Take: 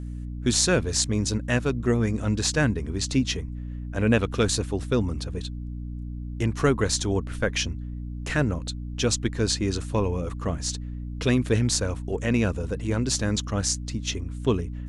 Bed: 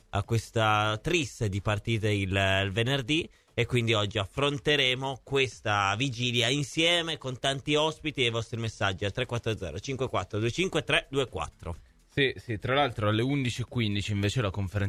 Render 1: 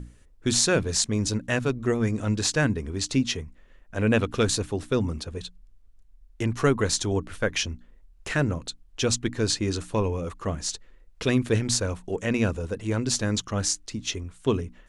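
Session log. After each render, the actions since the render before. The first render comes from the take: notches 60/120/180/240/300 Hz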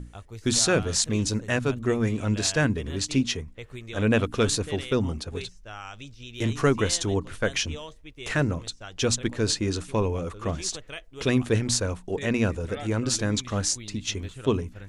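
add bed -14 dB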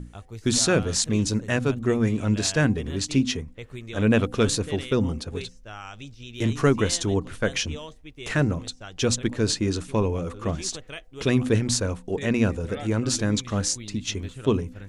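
bell 200 Hz +3.5 dB 1.8 oct; de-hum 253.7 Hz, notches 3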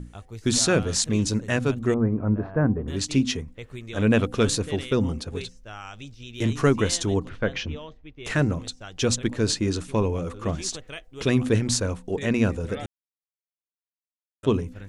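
1.94–2.88 LPF 1300 Hz 24 dB/oct; 7.29–8.25 air absorption 210 m; 12.86–14.43 mute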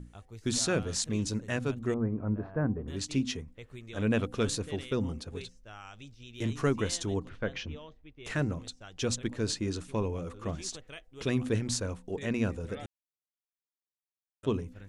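gain -8 dB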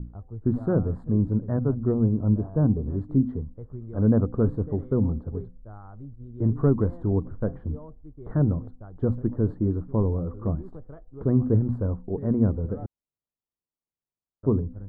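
inverse Chebyshev low-pass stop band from 2400 Hz, stop band 40 dB; low shelf 370 Hz +11.5 dB

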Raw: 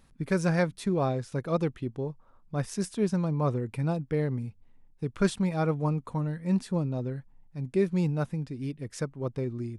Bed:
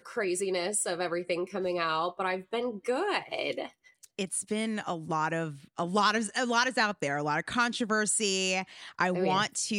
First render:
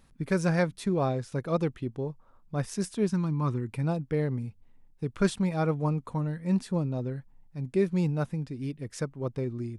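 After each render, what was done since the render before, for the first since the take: 3.1–3.72 band shelf 580 Hz -11 dB 1 oct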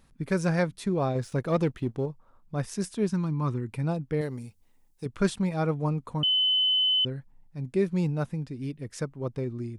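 1.15–2.06 sample leveller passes 1; 4.21–5.06 tone controls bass -7 dB, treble +13 dB; 6.23–7.05 bleep 3030 Hz -20.5 dBFS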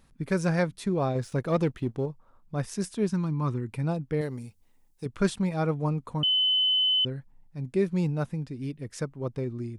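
nothing audible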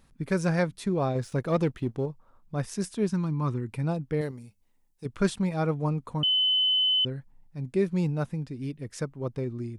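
4.31–5.05 resonator 200 Hz, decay 0.23 s, harmonics odd, mix 50%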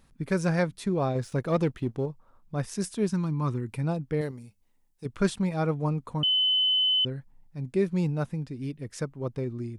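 2.75–3.8 high shelf 5400 Hz +4 dB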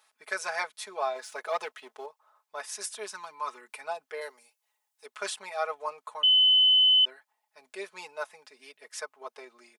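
HPF 670 Hz 24 dB/oct; comb 4.7 ms, depth 98%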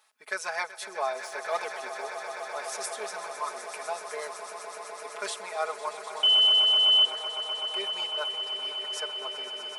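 swelling echo 0.126 s, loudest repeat 8, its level -13.5 dB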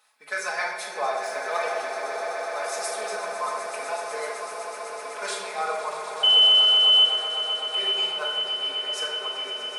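delay with a stepping band-pass 0.333 s, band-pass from 230 Hz, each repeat 1.4 oct, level -4.5 dB; shoebox room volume 760 m³, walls mixed, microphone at 2 m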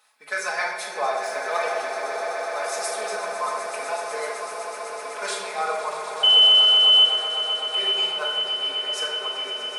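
gain +2 dB

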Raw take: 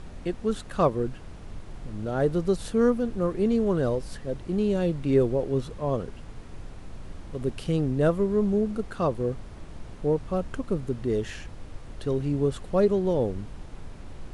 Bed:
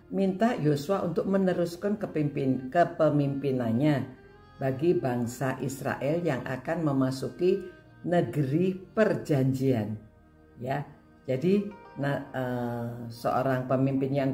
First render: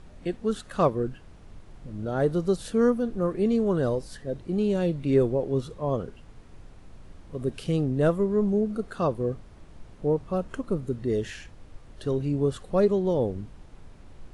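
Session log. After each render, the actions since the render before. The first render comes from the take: noise print and reduce 7 dB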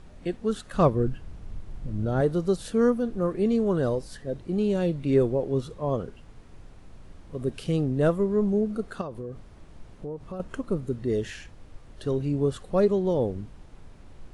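0.74–2.21 low shelf 170 Hz +10 dB; 9.01–10.4 compressor, threshold -32 dBFS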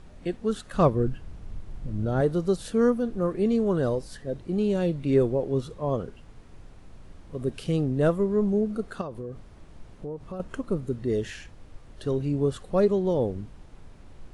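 nothing audible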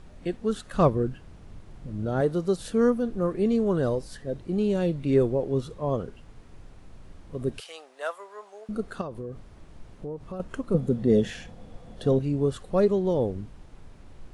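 0.97–2.58 low shelf 80 Hz -10 dB; 7.6–8.69 HPF 750 Hz 24 dB/oct; 10.74–12.19 small resonant body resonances 200/500/700/3400 Hz, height 12 dB, ringing for 35 ms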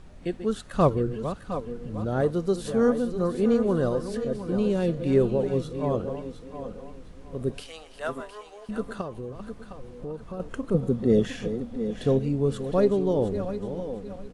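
regenerating reverse delay 0.354 s, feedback 60%, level -11 dB; echo 0.712 s -11.5 dB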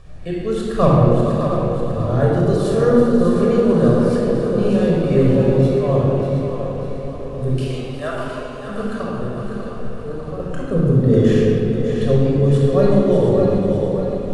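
split-band echo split 320 Hz, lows 0.1 s, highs 0.597 s, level -8 dB; shoebox room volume 3900 m³, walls mixed, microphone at 5.9 m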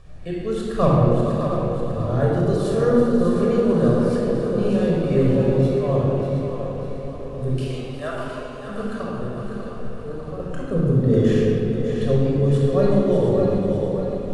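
gain -3.5 dB

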